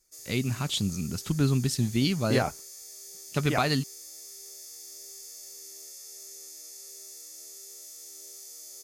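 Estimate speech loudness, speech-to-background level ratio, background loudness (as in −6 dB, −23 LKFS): −28.0 LKFS, 14.5 dB, −42.5 LKFS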